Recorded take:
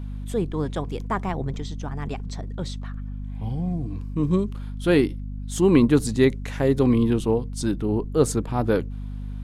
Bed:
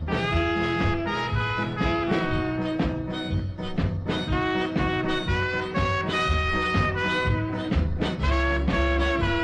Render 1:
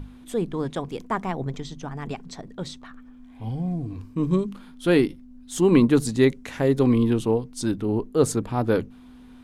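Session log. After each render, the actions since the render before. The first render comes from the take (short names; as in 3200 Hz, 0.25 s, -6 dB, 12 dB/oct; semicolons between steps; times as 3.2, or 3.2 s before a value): notches 50/100/150/200 Hz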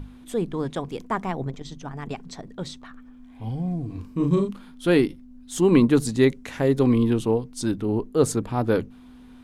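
1.48–2.11 core saturation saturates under 180 Hz; 3.86–4.51 doubler 35 ms -3 dB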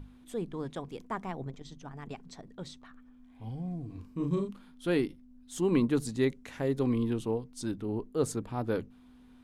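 gain -9.5 dB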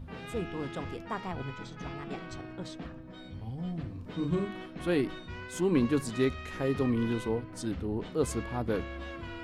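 add bed -17.5 dB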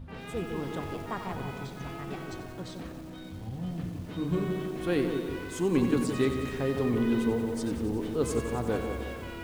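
analogue delay 0.16 s, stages 1024, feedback 47%, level -6 dB; lo-fi delay 91 ms, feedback 80%, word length 8-bit, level -10 dB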